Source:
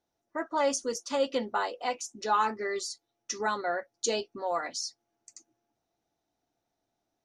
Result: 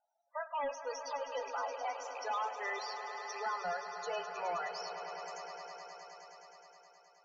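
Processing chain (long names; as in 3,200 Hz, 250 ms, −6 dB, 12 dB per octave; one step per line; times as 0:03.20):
loose part that buzzes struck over −53 dBFS, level −34 dBFS
high-pass filter 610 Hz 24 dB per octave
treble cut that deepens with the level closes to 2,700 Hz, closed at −29.5 dBFS
in parallel at −2 dB: downward compressor 6 to 1, threshold −44 dBFS, peak gain reduction 20 dB
on the sum: square-wave tremolo 0.77 Hz, depth 65%, duty 90%
soft clipping −34 dBFS, distortion −6 dB
spectral peaks only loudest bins 16
high-frequency loss of the air 73 metres
on a send: echo that builds up and dies away 105 ms, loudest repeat 5, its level −12.5 dB
on the sum: level +1 dB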